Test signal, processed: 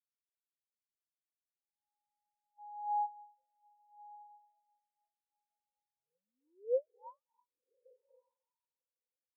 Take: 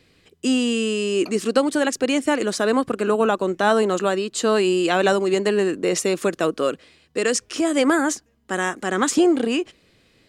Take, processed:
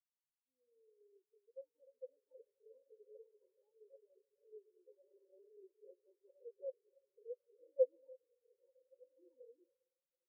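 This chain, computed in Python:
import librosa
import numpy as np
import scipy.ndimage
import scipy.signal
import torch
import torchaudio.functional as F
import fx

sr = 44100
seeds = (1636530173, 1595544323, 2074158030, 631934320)

p1 = fx.reverse_delay_fb(x, sr, ms=201, feedback_pct=72, wet_db=-11)
p2 = fx.level_steps(p1, sr, step_db=23)
p3 = 10.0 ** (-27.5 / 20.0) * np.tanh(p2 / 10.0 ** (-27.5 / 20.0))
p4 = fx.rider(p3, sr, range_db=4, speed_s=2.0)
p5 = fx.env_flanger(p4, sr, rest_ms=2.2, full_db=-32.5)
p6 = fx.double_bandpass(p5, sr, hz=700.0, octaves=0.88)
p7 = p6 + fx.echo_diffused(p6, sr, ms=1213, feedback_pct=41, wet_db=-3.5, dry=0)
p8 = fx.rev_gated(p7, sr, seeds[0], gate_ms=370, shape='rising', drr_db=5.0)
p9 = fx.spectral_expand(p8, sr, expansion=4.0)
y = p9 * 10.0 ** (2.0 / 20.0)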